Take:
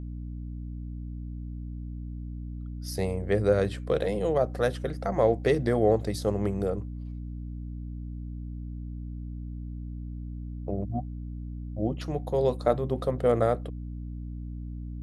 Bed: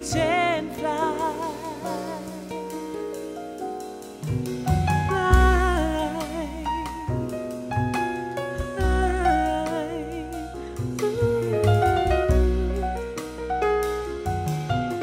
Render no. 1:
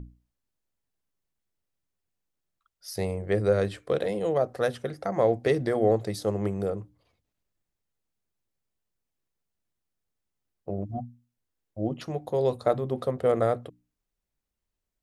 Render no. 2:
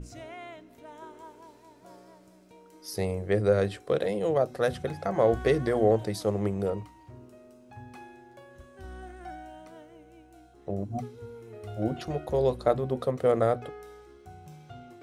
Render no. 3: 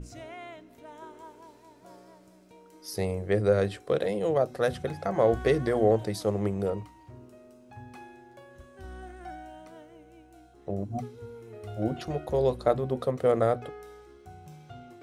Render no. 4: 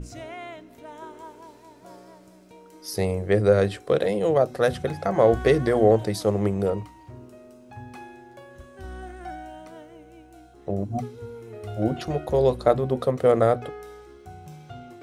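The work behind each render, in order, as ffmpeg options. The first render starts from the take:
-af "bandreject=f=60:t=h:w=6,bandreject=f=120:t=h:w=6,bandreject=f=180:t=h:w=6,bandreject=f=240:t=h:w=6,bandreject=f=300:t=h:w=6"
-filter_complex "[1:a]volume=-21.5dB[a];[0:a][a]amix=inputs=2:normalize=0"
-af anull
-af "volume=5dB"

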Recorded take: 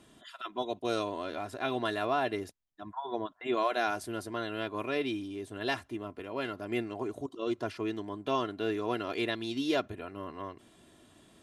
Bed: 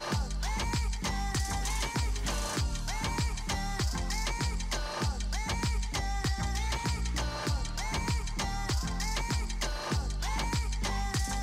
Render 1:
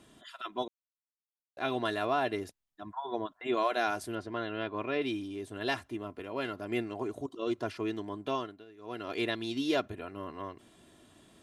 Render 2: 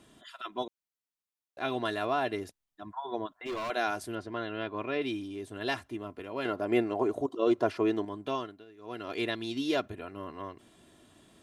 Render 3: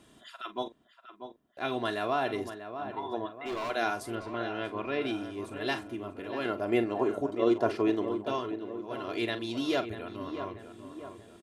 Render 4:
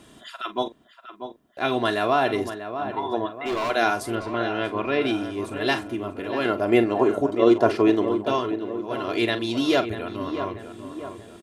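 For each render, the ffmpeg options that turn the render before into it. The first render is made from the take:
-filter_complex "[0:a]asettb=1/sr,asplit=3[a][b][c];[a]atrim=end=4.154[d];[b]atrim=start=4.15:end=5.02,asetpts=PTS-STARTPTS,afade=t=in:d=0.004:c=qsin,afade=t=out:st=0.866:d=0.004:c=qsin,lowpass=3.6k[e];[c]atrim=start=5.016[f];[d][e]acrossfade=d=0.004:c1=hsin:c2=qsin[g];[g][f]acrossfade=d=0.004:c1=qsin:c2=hsin,asplit=5[h][i][j][k][l];[h]atrim=end=0.68,asetpts=PTS-STARTPTS,afade=t=out:st=0.676:d=0.004:c=hsin[m];[i]atrim=start=0.68:end=1.57,asetpts=PTS-STARTPTS,volume=0[n];[j]atrim=start=1.57:end=8.65,asetpts=PTS-STARTPTS,afade=t=in:d=0.004:c=hsin,afade=t=out:st=6.64:d=0.44:silence=0.0749894[o];[k]atrim=start=8.65:end=8.77,asetpts=PTS-STARTPTS,volume=-22.5dB[p];[l]atrim=start=8.77,asetpts=PTS-STARTPTS,afade=t=in:d=0.44:silence=0.0749894[q];[m][n][o][p][q]concat=n=5:v=0:a=1"
-filter_complex "[0:a]asettb=1/sr,asplit=3[a][b][c];[a]atrim=end=3.284[d];[b]atrim=start=3.28:end=3.7,asetpts=PTS-STARTPTS,afade=t=in:d=0.004:c=qsin,afade=t=out:st=0.416:d=0.004:c=qsin,asoftclip=type=hard:threshold=-32.5dB[e];[c]atrim=start=3.696[f];[d][e]acrossfade=d=0.004:c1=hsin:c2=qsin[g];[g][f]acrossfade=d=0.004:c1=qsin:c2=hsin,asettb=1/sr,asplit=3[h][i][j];[h]atrim=end=6.454[k];[i]atrim=start=6.45:end=8.05,asetpts=PTS-STARTPTS,afade=t=in:d=0.004:c=qsin,afade=t=out:st=1.596:d=0.004:c=qsin,equalizer=f=600:t=o:w=2.6:g=9[l];[j]atrim=start=8.046[m];[k][l]acrossfade=d=0.004:c1=hsin:c2=qsin[n];[n][m]acrossfade=d=0.004:c1=qsin:c2=hsin"
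-filter_complex "[0:a]asplit=2[a][b];[b]adelay=43,volume=-12dB[c];[a][c]amix=inputs=2:normalize=0,asplit=2[d][e];[e]adelay=640,lowpass=f=1.8k:p=1,volume=-9dB,asplit=2[f][g];[g]adelay=640,lowpass=f=1.8k:p=1,volume=0.52,asplit=2[h][i];[i]adelay=640,lowpass=f=1.8k:p=1,volume=0.52,asplit=2[j][k];[k]adelay=640,lowpass=f=1.8k:p=1,volume=0.52,asplit=2[l][m];[m]adelay=640,lowpass=f=1.8k:p=1,volume=0.52,asplit=2[n][o];[o]adelay=640,lowpass=f=1.8k:p=1,volume=0.52[p];[f][h][j][l][n][p]amix=inputs=6:normalize=0[q];[d][q]amix=inputs=2:normalize=0"
-af "volume=8.5dB"

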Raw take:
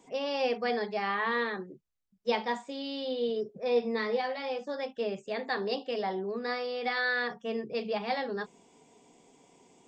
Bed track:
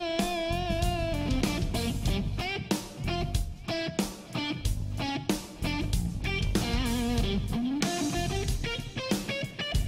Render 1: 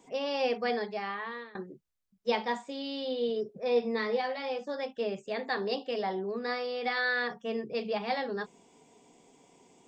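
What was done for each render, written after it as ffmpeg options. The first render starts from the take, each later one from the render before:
-filter_complex "[0:a]asplit=2[a][b];[a]atrim=end=1.55,asetpts=PTS-STARTPTS,afade=t=out:st=0.69:d=0.86:silence=0.0794328[c];[b]atrim=start=1.55,asetpts=PTS-STARTPTS,afade=t=in:d=0.004:c=hsin:silence=0.0794328[d];[c][d]concat=n=2:v=0:a=1"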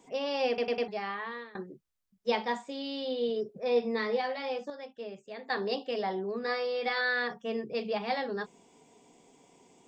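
-filter_complex "[0:a]asettb=1/sr,asplit=3[a][b][c];[a]atrim=end=6.424[d];[b]atrim=start=6.42:end=7.01,asetpts=PTS-STARTPTS,afade=t=in:d=0.004:c=qsin,afade=t=out:st=0.586:d=0.004:c=qsin,asplit=2[e][f];[f]adelay=14,volume=-6.5dB[g];[e][g]amix=inputs=2:normalize=0,atrim=end_sample=26019[h];[c]atrim=start=7.006[i];[d][h]acrossfade=d=0.004:c1=hsin:c2=qsin[j];[j][i]acrossfade=d=0.004:c1=qsin:c2=hsin,asplit=7[k][l][m][n][o][p][q];[k]atrim=end=0.582[r];[l]atrim=start=0.478:end=0.582[s];[m]atrim=start=0.478:end=0.582[t];[n]atrim=start=0.478:end=0.582[u];[o]atrim=start=0.878:end=4.702[v];[p]atrim=start=4.698:end=5.502,asetpts=PTS-STARTPTS,volume=-8.5dB[w];[q]atrim=start=5.498[x];[r][s]acrossfade=d=0.004:c1=hsin:c2=hsin[y];[y][t]acrossfade=d=0.004:c1=hsin:c2=hsin[z];[z][u]acrossfade=d=0.004:c1=hsin:c2=hsin[aa];[aa][v]acrossfade=d=0.004:c1=hsin:c2=hsin[ab];[ab][w]acrossfade=d=0.004:c1=hsin:c2=hsin[ac];[ac][x]acrossfade=d=0.004:c1=hsin:c2=hsin"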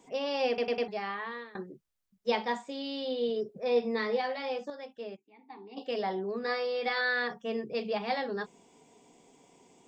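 -filter_complex "[0:a]asplit=3[a][b][c];[a]afade=t=out:st=5.15:d=0.02[d];[b]asplit=3[e][f][g];[e]bandpass=f=300:t=q:w=8,volume=0dB[h];[f]bandpass=f=870:t=q:w=8,volume=-6dB[i];[g]bandpass=f=2.24k:t=q:w=8,volume=-9dB[j];[h][i][j]amix=inputs=3:normalize=0,afade=t=in:st=5.15:d=0.02,afade=t=out:st=5.76:d=0.02[k];[c]afade=t=in:st=5.76:d=0.02[l];[d][k][l]amix=inputs=3:normalize=0"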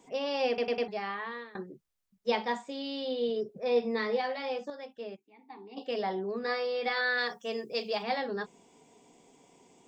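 -filter_complex "[0:a]asplit=3[a][b][c];[a]afade=t=out:st=7.17:d=0.02[d];[b]bass=f=250:g=-9,treble=f=4k:g=13,afade=t=in:st=7.17:d=0.02,afade=t=out:st=8.02:d=0.02[e];[c]afade=t=in:st=8.02:d=0.02[f];[d][e][f]amix=inputs=3:normalize=0"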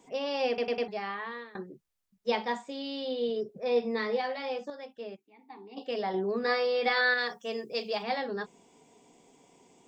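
-filter_complex "[0:a]asplit=3[a][b][c];[a]atrim=end=6.142[d];[b]atrim=start=6.138:end=7.142,asetpts=PTS-STARTPTS,volume=4dB[e];[c]atrim=start=7.138[f];[d][e]acrossfade=d=0.004:c1=hsin:c2=hsin[g];[g][f]acrossfade=d=0.004:c1=hsin:c2=hsin"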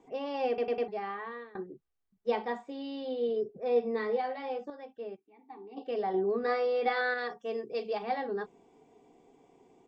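-af "lowpass=f=1.1k:p=1,aecho=1:1:2.6:0.35"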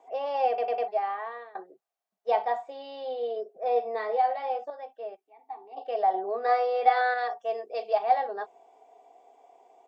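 -af "highpass=f=670:t=q:w=4.9"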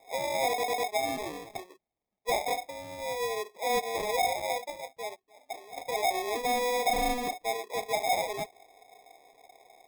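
-af "acrusher=samples=30:mix=1:aa=0.000001,asoftclip=type=tanh:threshold=-22dB"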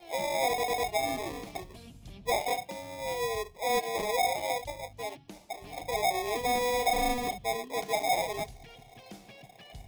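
-filter_complex "[1:a]volume=-19.5dB[a];[0:a][a]amix=inputs=2:normalize=0"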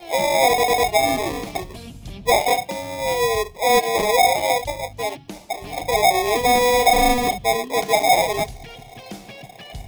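-af "volume=12dB"

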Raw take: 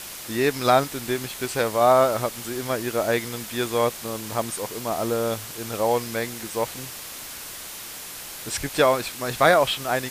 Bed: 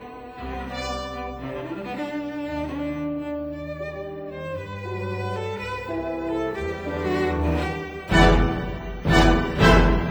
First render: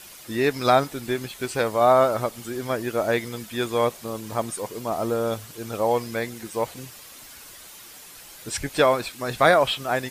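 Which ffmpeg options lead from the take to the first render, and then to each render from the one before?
-af "afftdn=nr=9:nf=-37"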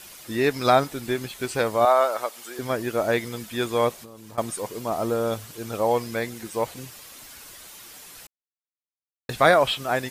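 -filter_complex "[0:a]asettb=1/sr,asplit=3[a][b][c];[a]atrim=end=1.854[d];[b]atrim=start=1.85:end=2.59,asetpts=PTS-STARTPTS,afade=t=in:d=0.004:c=qsin,afade=t=out:st=0.736:d=0.004:c=qsin,highpass=580[e];[c]atrim=start=2.586[f];[d][e]acrossfade=d=0.004:c1=hsin:c2=qsin[g];[g][f]acrossfade=d=0.004:c1=qsin:c2=hsin,asettb=1/sr,asplit=3[h][i][j];[h]atrim=end=3.934[k];[i]atrim=start=3.93:end=4.38,asetpts=PTS-STARTPTS,afade=t=in:d=0.004:c=qsin,afade=t=out:st=0.446:d=0.004:c=qsin,acompressor=threshold=-39dB:ratio=16:attack=3.2:release=140:knee=1:detection=peak[l];[j]atrim=start=4.376[m];[k][l]acrossfade=d=0.004:c1=hsin:c2=qsin[n];[n][m]acrossfade=d=0.004:c1=qsin:c2=hsin,asplit=3[o][p][q];[o]atrim=end=8.27,asetpts=PTS-STARTPTS,afade=t=out:st=8.266:d=0.004:c=hsin[r];[p]atrim=start=8.27:end=9.29,asetpts=PTS-STARTPTS,volume=0[s];[q]atrim=start=9.29,asetpts=PTS-STARTPTS,afade=t=in:d=0.004:c=hsin[t];[r][s][t]concat=n=3:v=0:a=1"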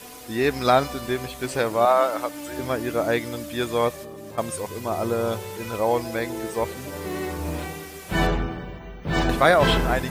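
-filter_complex "[1:a]volume=-6.5dB[a];[0:a][a]amix=inputs=2:normalize=0"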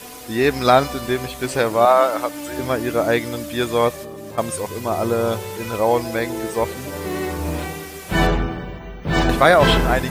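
-af "volume=4.5dB,alimiter=limit=-1dB:level=0:latency=1"

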